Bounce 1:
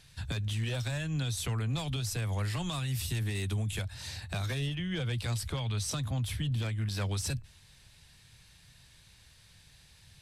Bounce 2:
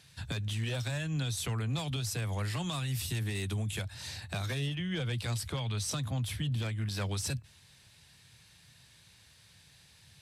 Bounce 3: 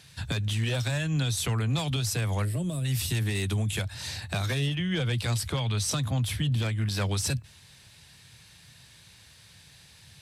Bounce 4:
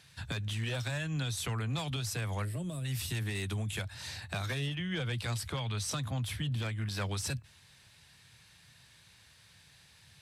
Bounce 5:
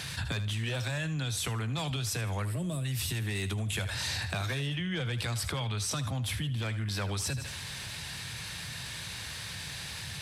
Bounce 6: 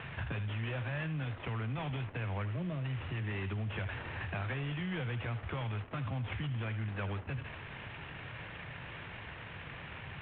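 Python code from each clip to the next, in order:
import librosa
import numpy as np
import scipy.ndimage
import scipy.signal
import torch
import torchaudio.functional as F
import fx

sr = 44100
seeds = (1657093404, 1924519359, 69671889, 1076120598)

y1 = scipy.signal.sosfilt(scipy.signal.butter(2, 90.0, 'highpass', fs=sr, output='sos'), x)
y2 = fx.spec_box(y1, sr, start_s=2.44, length_s=0.41, low_hz=670.0, high_hz=7600.0, gain_db=-16)
y2 = F.gain(torch.from_numpy(y2), 6.0).numpy()
y3 = fx.peak_eq(y2, sr, hz=1400.0, db=4.0, octaves=2.0)
y3 = F.gain(torch.from_numpy(y3), -7.5).numpy()
y4 = fx.rider(y3, sr, range_db=10, speed_s=0.5)
y4 = fx.echo_thinned(y4, sr, ms=78, feedback_pct=33, hz=420.0, wet_db=-13.5)
y4 = fx.env_flatten(y4, sr, amount_pct=70)
y5 = fx.cvsd(y4, sr, bps=16000)
y5 = F.gain(torch.from_numpy(y5), -3.0).numpy()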